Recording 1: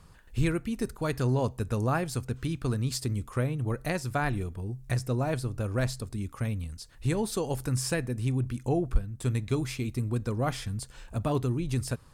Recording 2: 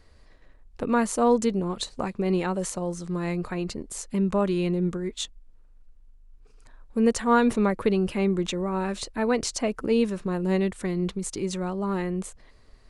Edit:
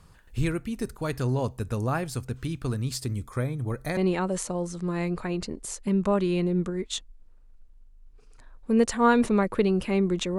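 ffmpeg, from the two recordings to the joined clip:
-filter_complex "[0:a]asettb=1/sr,asplit=3[s0][s1][s2];[s0]atrim=end=3.224[s3];[s1]atrim=start=3.22:end=3.97,asetpts=PTS-STARTPTS,afade=t=in:d=0.004:c=qsin,afade=t=out:st=0.746:d=0.004:c=qsin,asuperstop=centerf=2800:order=12:qfactor=5.6[s4];[s2]atrim=start=3.966[s5];[s3][s4]acrossfade=d=0.004:c1=hsin:c2=qsin[s6];[s6][s5]acrossfade=d=0.004:c1=qsin:c2=hsin,apad=whole_dur=10.38,atrim=end=10.38,atrim=end=3.972[s7];[1:a]atrim=start=2.238:end=8.65[s8];[s7][s8]acrossfade=d=0.004:c1=hsin:c2=hsin"

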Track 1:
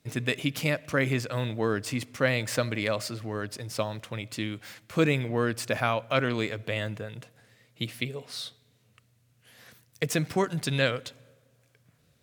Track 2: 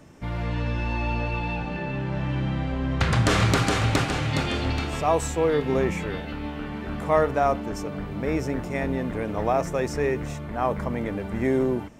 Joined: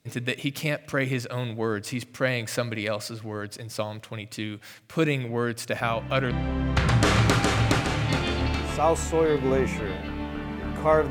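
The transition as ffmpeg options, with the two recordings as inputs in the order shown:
-filter_complex "[1:a]asplit=2[s0][s1];[0:a]apad=whole_dur=11.1,atrim=end=11.1,atrim=end=6.312[s2];[s1]atrim=start=2.548:end=7.34[s3];[s0]atrim=start=2.05:end=2.55,asetpts=PTS-STARTPTS,volume=0.335,afade=t=in:d=0.004:c=hsin,afade=t=out:st=0.496:d=0.004:c=hsin,adelay=256221S[s4];[s2][s3]acrossfade=d=0.004:c1=hsin:c2=hsin[s5];[s5][s4]amix=inputs=2:normalize=0"

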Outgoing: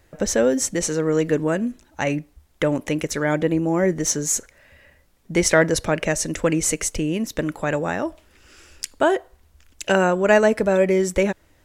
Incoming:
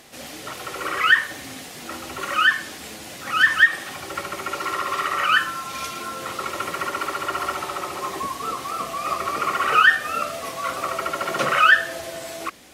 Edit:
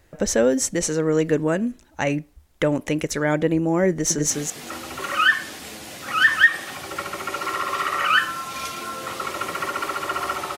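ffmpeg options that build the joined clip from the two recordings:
-filter_complex "[0:a]apad=whole_dur=10.57,atrim=end=10.57,atrim=end=4.302[s0];[1:a]atrim=start=1.488:end=7.76[s1];[s0][s1]acrossfade=d=0.004:c1=hsin:c2=hsin,asplit=2[s2][s3];[s3]afade=t=in:st=3.9:d=0.01,afade=t=out:st=4.3:d=0.01,aecho=0:1:200|400:0.749894|0.0749894[s4];[s2][s4]amix=inputs=2:normalize=0"

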